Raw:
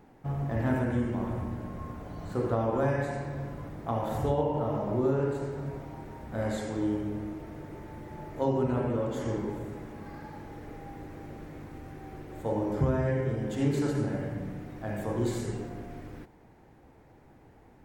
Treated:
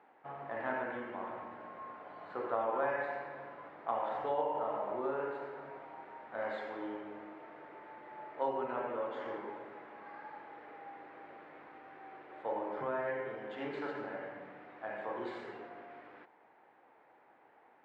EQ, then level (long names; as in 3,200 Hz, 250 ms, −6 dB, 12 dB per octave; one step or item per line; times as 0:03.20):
high-pass filter 790 Hz 12 dB per octave
low-pass filter 6,100 Hz
high-frequency loss of the air 470 metres
+3.5 dB